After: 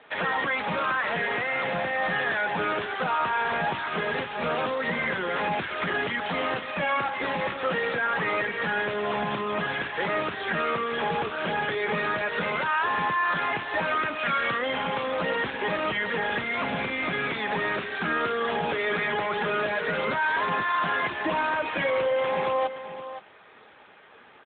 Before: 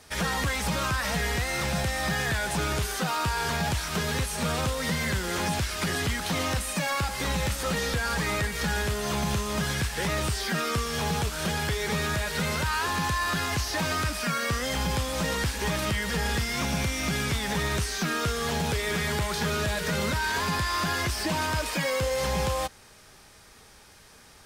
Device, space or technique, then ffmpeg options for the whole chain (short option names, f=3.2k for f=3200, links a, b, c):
telephone: -filter_complex "[0:a]asplit=3[a][b][c];[a]afade=t=out:st=14.17:d=0.02[d];[b]aemphasis=mode=production:type=75fm,afade=t=in:st=14.17:d=0.02,afade=t=out:st=14.57:d=0.02[e];[c]afade=t=in:st=14.57:d=0.02[f];[d][e][f]amix=inputs=3:normalize=0,bandreject=f=50:t=h:w=6,bandreject=f=100:t=h:w=6,bandreject=f=150:t=h:w=6,bandreject=f=200:t=h:w=6,bandreject=f=250:t=h:w=6,bandreject=f=300:t=h:w=6,bandreject=f=350:t=h:w=6,bandreject=f=400:t=h:w=6,asplit=3[g][h][i];[g]afade=t=out:st=11.49:d=0.02[j];[h]lowshelf=f=110:g=5,afade=t=in:st=11.49:d=0.02,afade=t=out:st=12.34:d=0.02[k];[i]afade=t=in:st=12.34:d=0.02[l];[j][k][l]amix=inputs=3:normalize=0,highpass=290,lowpass=3.2k,aecho=1:1:521:0.224,asoftclip=type=tanh:threshold=-23dB,volume=6dB" -ar 8000 -c:a libopencore_amrnb -b:a 12200